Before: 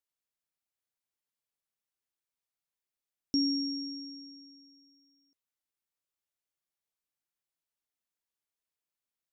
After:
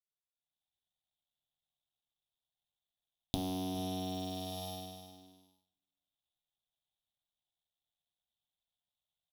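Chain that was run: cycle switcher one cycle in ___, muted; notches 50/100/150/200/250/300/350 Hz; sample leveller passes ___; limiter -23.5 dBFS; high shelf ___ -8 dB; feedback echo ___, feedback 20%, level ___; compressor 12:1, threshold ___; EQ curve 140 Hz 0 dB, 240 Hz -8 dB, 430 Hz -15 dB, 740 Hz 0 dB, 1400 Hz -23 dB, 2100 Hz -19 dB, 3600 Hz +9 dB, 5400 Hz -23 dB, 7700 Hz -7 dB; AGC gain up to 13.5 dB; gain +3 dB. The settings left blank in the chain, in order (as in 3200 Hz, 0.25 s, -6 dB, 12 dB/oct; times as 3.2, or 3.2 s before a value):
3, 5, 4300 Hz, 0.407 s, -13 dB, -43 dBFS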